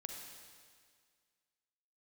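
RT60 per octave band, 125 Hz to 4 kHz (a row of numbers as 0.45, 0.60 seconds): 1.9, 1.9, 1.9, 1.9, 1.9, 1.9 seconds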